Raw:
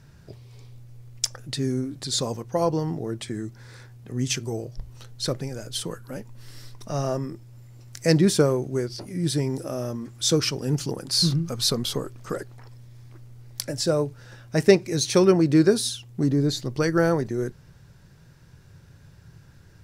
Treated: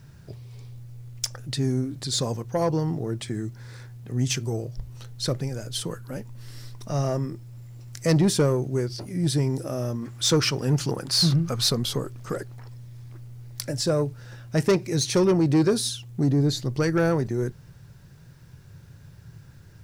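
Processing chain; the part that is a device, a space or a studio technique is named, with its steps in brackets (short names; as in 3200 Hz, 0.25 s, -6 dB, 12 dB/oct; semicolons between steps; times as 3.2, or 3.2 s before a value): open-reel tape (soft clip -14.5 dBFS, distortion -13 dB; bell 120 Hz +4.5 dB 0.93 oct; white noise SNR 44 dB); 10.02–11.69 bell 1400 Hz +6 dB 2.5 oct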